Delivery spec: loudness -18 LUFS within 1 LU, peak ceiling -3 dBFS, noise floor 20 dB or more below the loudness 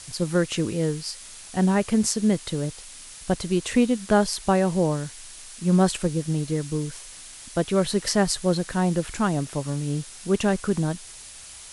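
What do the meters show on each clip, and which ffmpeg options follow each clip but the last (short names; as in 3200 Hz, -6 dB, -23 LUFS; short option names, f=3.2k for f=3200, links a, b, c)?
noise floor -43 dBFS; noise floor target -45 dBFS; loudness -24.5 LUFS; peak -7.0 dBFS; loudness target -18.0 LUFS
-> -af "afftdn=nr=6:nf=-43"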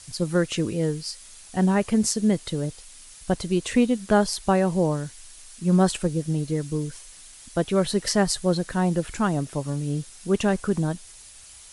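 noise floor -47 dBFS; loudness -24.5 LUFS; peak -7.0 dBFS; loudness target -18.0 LUFS
-> -af "volume=6.5dB,alimiter=limit=-3dB:level=0:latency=1"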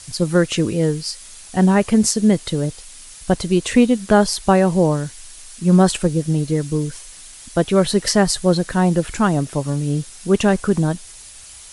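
loudness -18.0 LUFS; peak -3.0 dBFS; noise floor -40 dBFS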